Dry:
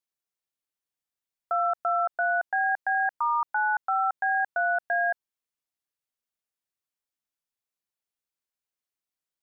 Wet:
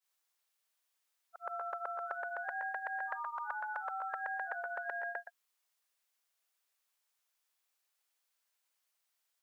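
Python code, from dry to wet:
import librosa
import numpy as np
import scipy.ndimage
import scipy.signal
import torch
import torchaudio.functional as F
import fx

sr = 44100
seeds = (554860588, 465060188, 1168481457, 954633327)

y = fx.frame_reverse(x, sr, frame_ms=239.0)
y = scipy.signal.sosfilt(scipy.signal.butter(2, 650.0, 'highpass', fs=sr, output='sos'), y)
y = fx.spectral_comp(y, sr, ratio=2.0)
y = F.gain(torch.from_numpy(y), -2.5).numpy()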